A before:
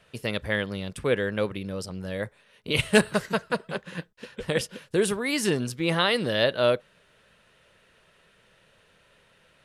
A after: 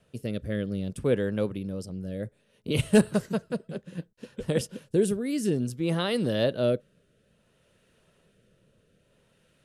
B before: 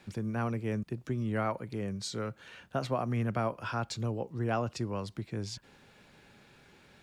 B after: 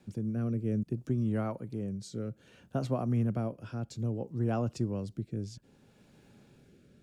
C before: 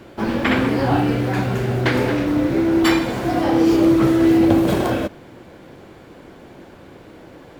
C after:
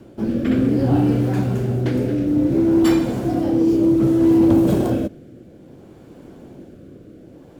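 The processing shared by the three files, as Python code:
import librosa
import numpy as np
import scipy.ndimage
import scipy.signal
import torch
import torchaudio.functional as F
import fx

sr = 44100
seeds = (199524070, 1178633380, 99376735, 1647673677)

y = fx.rotary(x, sr, hz=0.6)
y = fx.graphic_eq(y, sr, hz=(125, 250, 1000, 2000, 4000), db=(3, 4, -5, -8, -5))
y = 10.0 ** (-5.0 / 20.0) * np.tanh(y / 10.0 ** (-5.0 / 20.0))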